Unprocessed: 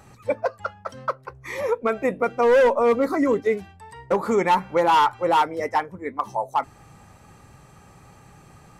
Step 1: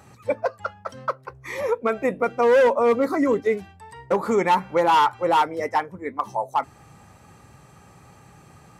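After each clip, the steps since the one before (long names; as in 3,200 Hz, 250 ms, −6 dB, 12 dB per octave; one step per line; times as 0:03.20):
high-pass filter 60 Hz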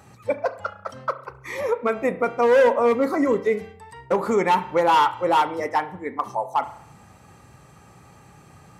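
convolution reverb RT60 0.65 s, pre-delay 33 ms, DRR 12 dB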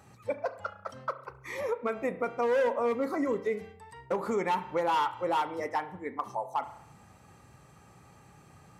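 downward compressor 1.5 to 1, threshold −24 dBFS, peak gain reduction 4.5 dB
level −6.5 dB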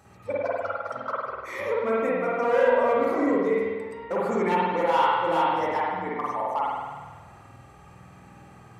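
spring reverb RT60 1.5 s, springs 49 ms, chirp 65 ms, DRR −6 dB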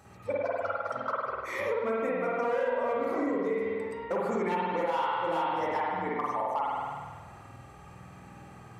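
downward compressor 4 to 1, threshold −27 dBFS, peak gain reduction 10 dB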